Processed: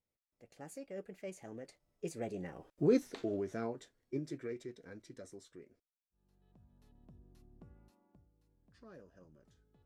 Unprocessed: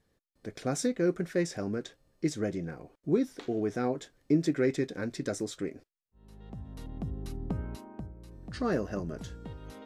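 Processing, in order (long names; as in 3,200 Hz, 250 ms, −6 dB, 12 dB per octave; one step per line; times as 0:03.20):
source passing by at 0:02.87, 31 m/s, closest 8.6 metres
formants moved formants +2 semitones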